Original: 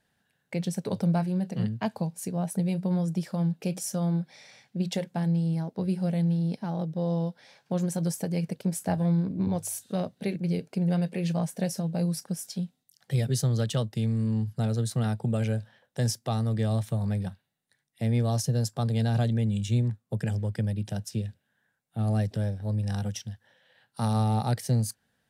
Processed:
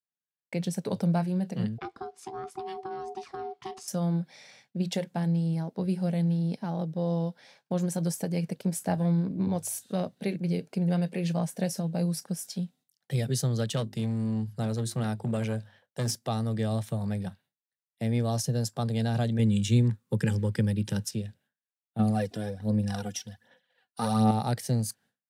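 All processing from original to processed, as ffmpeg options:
ffmpeg -i in.wav -filter_complex "[0:a]asettb=1/sr,asplit=3[link_01][link_02][link_03];[link_01]atrim=end=1.784[link_04];[link_02]atrim=start=1.78:end=3.88,asetpts=PTS-STARTPTS,afade=type=in:duration=0.004:curve=qsin,afade=type=out:start_time=2.096:duration=0.004:curve=qsin,lowpass=5400,acrossover=split=240|660[link_05][link_06][link_07];[link_05]acompressor=threshold=-35dB:ratio=4[link_08];[link_06]acompressor=threshold=-47dB:ratio=4[link_09];[link_07]acompressor=threshold=-40dB:ratio=4[link_10];[link_08][link_09][link_10]amix=inputs=3:normalize=0,aeval=exprs='val(0)*sin(2*PI*570*n/s)':channel_layout=same[link_11];[link_03]atrim=start=3.876[link_12];[link_04][link_11]acrossfade=duration=0.004:curve1=hsin:curve2=qsin[link_13];[link_13][link_12]acrossfade=duration=0.004:curve1=qsin:curve2=hsin,asettb=1/sr,asplit=3[link_14][link_15][link_16];[link_14]atrim=end=13.764[link_17];[link_15]atrim=start=13.76:end=16.15,asetpts=PTS-STARTPTS,afade=type=in:duration=0.004:curve=qsin,afade=type=out:start_time=2.386:duration=0.004:curve=qsin,bandreject=frequency=50:width_type=h:width=6,bandreject=frequency=100:width_type=h:width=6,bandreject=frequency=150:width_type=h:width=6,bandreject=frequency=200:width_type=h:width=6,bandreject=frequency=250:width_type=h:width=6,bandreject=frequency=300:width_type=h:width=6,bandreject=frequency=350:width_type=h:width=6,bandreject=frequency=400:width_type=h:width=6,asoftclip=type=hard:threshold=-22dB[link_18];[link_16]atrim=start=16.146[link_19];[link_17][link_18]acrossfade=duration=0.004:curve1=hsin:curve2=qsin[link_20];[link_20][link_19]acrossfade=duration=0.004:curve1=qsin:curve2=hsin,asettb=1/sr,asplit=3[link_21][link_22][link_23];[link_21]atrim=end=19.394[link_24];[link_22]atrim=start=19.39:end=21.11,asetpts=PTS-STARTPTS,afade=type=in:duration=0.004:curve=qsin,afade=type=out:start_time=1.716:duration=0.004:curve=qsin,asuperstop=centerf=680:order=4:qfactor=2.6,acontrast=28[link_25];[link_23]atrim=start=21.106[link_26];[link_24][link_25]acrossfade=duration=0.004:curve1=hsin:curve2=qsin[link_27];[link_27][link_26]acrossfade=duration=0.004:curve1=qsin:curve2=hsin,asettb=1/sr,asplit=3[link_28][link_29][link_30];[link_28]atrim=end=21.994[link_31];[link_29]atrim=start=21.99:end=24.31,asetpts=PTS-STARTPTS,afade=type=in:duration=0.004:curve=qsin,afade=type=out:start_time=2.316:duration=0.004:curve=qsin,aecho=1:1:4.1:0.44,atrim=end_sample=102312,aphaser=in_gain=1:out_gain=1:delay=2.9:decay=0.54:speed=1.3:type=sinusoidal[link_32];[link_30]atrim=start=24.306[link_33];[link_31][link_32]acrossfade=duration=0.004:curve1=hsin:curve2=qsin[link_34];[link_34][link_33]acrossfade=duration=0.004:curve1=qsin:curve2=hsin,agate=range=-33dB:threshold=-52dB:ratio=3:detection=peak,highpass=120" out.wav

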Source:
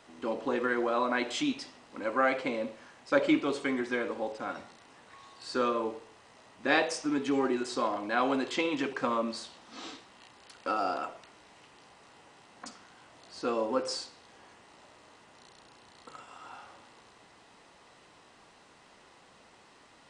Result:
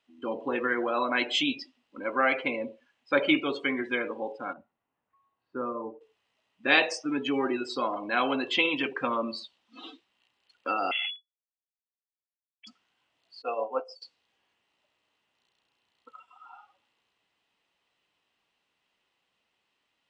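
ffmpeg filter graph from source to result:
ffmpeg -i in.wav -filter_complex "[0:a]asettb=1/sr,asplit=3[link_01][link_02][link_03];[link_01]atrim=end=4.534[link_04];[link_02]atrim=start=4.53:end=6.01,asetpts=PTS-STARTPTS,afade=type=in:duration=0.004:curve=qsin,afade=type=out:start_time=1.476:duration=0.004:curve=qsin,lowpass=1000,equalizer=frequency=440:width=0.84:gain=-5[link_05];[link_03]atrim=start=6.006[link_06];[link_04][link_05]acrossfade=duration=0.004:curve1=hsin:curve2=qsin[link_07];[link_07][link_06]acrossfade=duration=0.004:curve1=qsin:curve2=hsin,asettb=1/sr,asplit=3[link_08][link_09][link_10];[link_08]atrim=end=10.914[link_11];[link_09]atrim=start=10.91:end=12.67,asetpts=PTS-STARTPTS,afade=type=in:duration=0.004:curve=qsin,afade=type=out:start_time=1.756:duration=0.004:curve=qsin,tremolo=f=21:d=0.261,acrusher=bits=4:dc=4:mix=0:aa=0.000001,lowpass=frequency=2900:width_type=q:width=0.5098,lowpass=frequency=2900:width_type=q:width=0.6013,lowpass=frequency=2900:width_type=q:width=0.9,lowpass=frequency=2900:width_type=q:width=2.563,afreqshift=-3400[link_12];[link_10]atrim=start=12.666[link_13];[link_11][link_12]acrossfade=duration=0.004:curve1=hsin:curve2=qsin[link_14];[link_14][link_13]acrossfade=duration=0.004:curve1=qsin:curve2=hsin,asettb=1/sr,asplit=3[link_15][link_16][link_17];[link_15]atrim=end=13.424[link_18];[link_16]atrim=start=13.42:end=14.02,asetpts=PTS-STARTPTS,afade=type=in:duration=0.004:curve=qsin,afade=type=out:start_time=0.596:duration=0.004:curve=qsin,agate=range=-33dB:threshold=-28dB:ratio=3:release=100:detection=peak,highpass=210,equalizer=frequency=240:width_type=q:width=4:gain=-10,equalizer=frequency=350:width_type=q:width=4:gain=-10,equalizer=frequency=690:width_type=q:width=4:gain=10,equalizer=frequency=1700:width_type=q:width=4:gain=-8,equalizer=frequency=3800:width_type=q:width=4:gain=-9,lowpass=frequency=8500:width=0.5412,lowpass=frequency=8500:width=1.3066[link_19];[link_17]atrim=start=14.016[link_20];[link_18][link_19]acrossfade=duration=0.004:curve1=hsin:curve2=qsin[link_21];[link_21][link_20]acrossfade=duration=0.004:curve1=qsin:curve2=hsin,afftdn=noise_reduction=24:noise_floor=-40,equalizer=frequency=2900:width=1.4:gain=12.5" out.wav

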